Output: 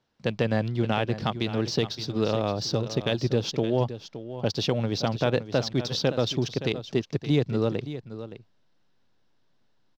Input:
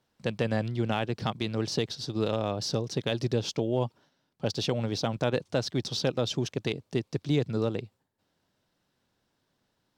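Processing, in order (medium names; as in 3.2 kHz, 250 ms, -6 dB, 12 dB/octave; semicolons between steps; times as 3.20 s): low-pass 6.3 kHz 24 dB/octave; in parallel at -7 dB: hysteresis with a dead band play -38 dBFS; on the sum: delay 569 ms -12.5 dB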